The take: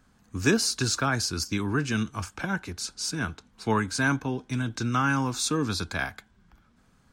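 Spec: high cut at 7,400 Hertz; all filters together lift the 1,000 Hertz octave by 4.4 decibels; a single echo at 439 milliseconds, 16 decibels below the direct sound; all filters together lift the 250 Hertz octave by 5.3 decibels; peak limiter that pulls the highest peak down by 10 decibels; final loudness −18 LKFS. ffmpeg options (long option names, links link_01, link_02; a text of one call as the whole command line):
ffmpeg -i in.wav -af "lowpass=7400,equalizer=frequency=250:width_type=o:gain=6,equalizer=frequency=1000:width_type=o:gain=5.5,alimiter=limit=-16.5dB:level=0:latency=1,aecho=1:1:439:0.158,volume=9.5dB" out.wav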